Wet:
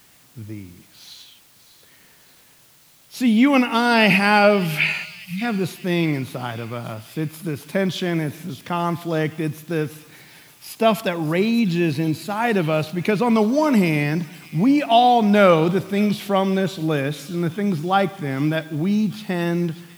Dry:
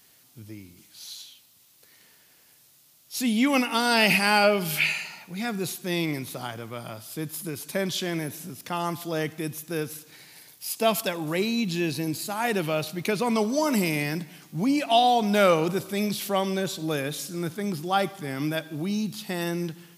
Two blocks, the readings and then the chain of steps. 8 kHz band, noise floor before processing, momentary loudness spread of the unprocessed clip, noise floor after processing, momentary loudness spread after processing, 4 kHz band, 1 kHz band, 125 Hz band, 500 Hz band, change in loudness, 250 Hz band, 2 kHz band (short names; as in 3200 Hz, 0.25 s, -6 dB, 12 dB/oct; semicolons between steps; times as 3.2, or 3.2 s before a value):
-4.5 dB, -58 dBFS, 16 LU, -53 dBFS, 14 LU, +1.0 dB, +5.5 dB, +9.0 dB, +6.0 dB, +6.0 dB, +8.0 dB, +4.5 dB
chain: spectral delete 5.04–5.42, 210–2000 Hz; tone controls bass +4 dB, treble -12 dB; thin delay 0.591 s, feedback 57%, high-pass 3300 Hz, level -12 dB; in parallel at -9 dB: requantised 8-bit, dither triangular; on the sum: gain +3 dB